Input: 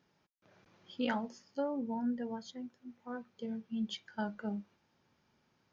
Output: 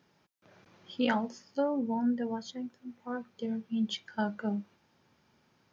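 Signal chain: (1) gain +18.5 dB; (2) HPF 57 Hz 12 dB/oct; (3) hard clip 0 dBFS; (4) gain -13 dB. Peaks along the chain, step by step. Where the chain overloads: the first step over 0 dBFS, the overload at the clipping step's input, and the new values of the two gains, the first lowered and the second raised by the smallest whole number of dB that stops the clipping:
-2.5, -3.0, -3.0, -16.0 dBFS; no overload

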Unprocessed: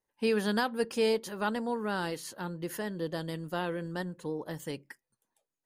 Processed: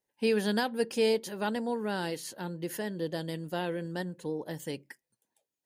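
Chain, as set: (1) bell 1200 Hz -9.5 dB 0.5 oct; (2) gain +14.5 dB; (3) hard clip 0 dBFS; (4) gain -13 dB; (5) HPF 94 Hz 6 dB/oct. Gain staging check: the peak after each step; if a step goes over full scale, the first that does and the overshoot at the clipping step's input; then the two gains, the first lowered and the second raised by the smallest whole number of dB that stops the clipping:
-17.5, -3.0, -3.0, -16.0, -16.5 dBFS; no overload

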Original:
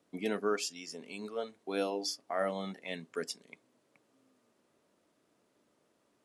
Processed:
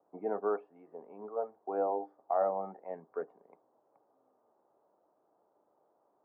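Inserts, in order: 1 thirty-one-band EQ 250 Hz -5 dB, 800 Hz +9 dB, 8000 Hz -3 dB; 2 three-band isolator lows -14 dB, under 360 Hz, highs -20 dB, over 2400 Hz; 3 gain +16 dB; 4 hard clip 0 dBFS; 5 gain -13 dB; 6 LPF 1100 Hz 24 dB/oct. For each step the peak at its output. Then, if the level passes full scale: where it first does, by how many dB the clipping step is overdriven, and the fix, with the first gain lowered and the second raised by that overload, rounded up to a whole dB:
-18.0, -20.0, -4.0, -4.0, -17.0, -18.0 dBFS; no overload

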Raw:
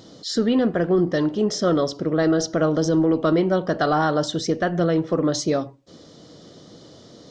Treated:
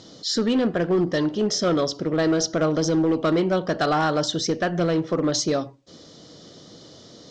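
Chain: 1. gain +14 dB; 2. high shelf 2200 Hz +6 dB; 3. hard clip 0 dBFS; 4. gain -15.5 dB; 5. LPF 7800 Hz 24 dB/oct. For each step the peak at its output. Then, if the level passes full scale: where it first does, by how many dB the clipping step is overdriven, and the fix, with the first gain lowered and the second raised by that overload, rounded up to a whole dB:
+3.0, +5.5, 0.0, -15.5, -13.5 dBFS; step 1, 5.5 dB; step 1 +8 dB, step 4 -9.5 dB

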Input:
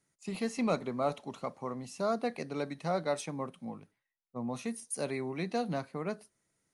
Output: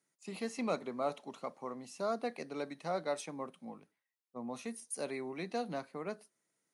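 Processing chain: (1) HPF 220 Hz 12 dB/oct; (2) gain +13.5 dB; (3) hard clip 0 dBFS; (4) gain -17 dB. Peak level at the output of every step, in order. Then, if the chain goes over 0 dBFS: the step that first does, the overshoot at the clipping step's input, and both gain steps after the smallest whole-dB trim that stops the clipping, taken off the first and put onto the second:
-18.0, -4.5, -4.5, -21.5 dBFS; no overload

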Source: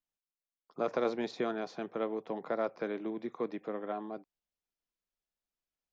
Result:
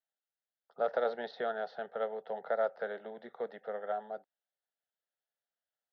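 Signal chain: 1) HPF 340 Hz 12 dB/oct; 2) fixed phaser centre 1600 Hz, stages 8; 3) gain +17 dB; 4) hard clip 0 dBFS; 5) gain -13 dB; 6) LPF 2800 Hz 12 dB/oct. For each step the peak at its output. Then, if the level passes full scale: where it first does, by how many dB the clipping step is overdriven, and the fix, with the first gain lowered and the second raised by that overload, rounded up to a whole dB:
-19.5, -22.0, -5.0, -5.0, -18.0, -18.0 dBFS; no overload

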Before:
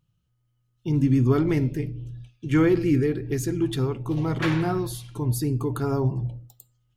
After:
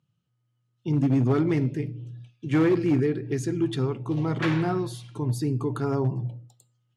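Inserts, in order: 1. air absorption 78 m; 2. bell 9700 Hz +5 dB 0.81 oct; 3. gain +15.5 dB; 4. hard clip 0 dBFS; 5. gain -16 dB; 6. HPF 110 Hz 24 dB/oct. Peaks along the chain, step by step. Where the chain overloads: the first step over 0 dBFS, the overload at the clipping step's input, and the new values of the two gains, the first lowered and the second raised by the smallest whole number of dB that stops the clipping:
-9.5, -9.5, +6.0, 0.0, -16.0, -12.0 dBFS; step 3, 6.0 dB; step 3 +9.5 dB, step 5 -10 dB

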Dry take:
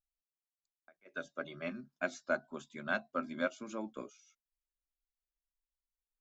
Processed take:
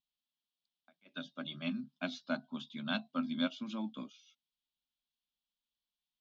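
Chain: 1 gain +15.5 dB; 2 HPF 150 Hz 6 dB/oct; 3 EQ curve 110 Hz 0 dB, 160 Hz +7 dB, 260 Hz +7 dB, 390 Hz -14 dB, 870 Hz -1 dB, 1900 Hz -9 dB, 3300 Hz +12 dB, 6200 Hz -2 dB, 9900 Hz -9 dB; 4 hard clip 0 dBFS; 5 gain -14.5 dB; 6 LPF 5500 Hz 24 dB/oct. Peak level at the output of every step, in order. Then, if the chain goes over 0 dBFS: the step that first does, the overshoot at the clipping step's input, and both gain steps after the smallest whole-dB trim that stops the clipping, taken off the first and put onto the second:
-3.0, -4.0, -5.5, -5.5, -20.0, -20.0 dBFS; no overload

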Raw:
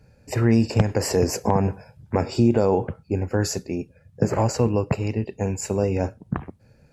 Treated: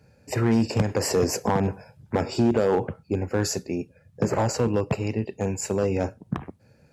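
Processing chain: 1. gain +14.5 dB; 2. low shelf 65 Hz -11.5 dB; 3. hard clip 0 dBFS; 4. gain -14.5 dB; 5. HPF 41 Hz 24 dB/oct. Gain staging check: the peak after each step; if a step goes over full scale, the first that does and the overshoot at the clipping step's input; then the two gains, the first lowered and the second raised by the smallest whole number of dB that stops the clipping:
+9.5, +9.0, 0.0, -14.5, -11.0 dBFS; step 1, 9.0 dB; step 1 +5.5 dB, step 4 -5.5 dB

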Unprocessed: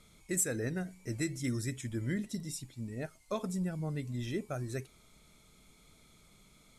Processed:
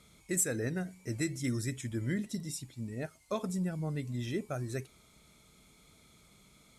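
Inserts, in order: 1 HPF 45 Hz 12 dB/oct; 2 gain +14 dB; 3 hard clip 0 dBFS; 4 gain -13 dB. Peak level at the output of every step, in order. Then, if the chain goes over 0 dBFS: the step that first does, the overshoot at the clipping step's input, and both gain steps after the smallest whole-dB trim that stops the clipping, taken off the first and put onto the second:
-19.5, -5.5, -5.5, -18.5 dBFS; no overload

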